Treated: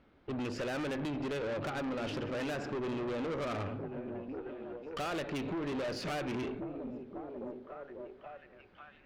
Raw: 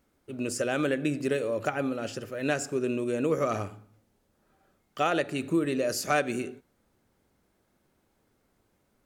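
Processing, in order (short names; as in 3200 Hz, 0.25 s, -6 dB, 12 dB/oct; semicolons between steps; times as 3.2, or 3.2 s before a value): LPF 3700 Hz 24 dB/oct; compressor 6:1, threshold -32 dBFS, peak gain reduction 11 dB; delay with a stepping band-pass 0.54 s, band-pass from 170 Hz, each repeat 0.7 oct, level -8 dB; tube stage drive 42 dB, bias 0.5; gain +8.5 dB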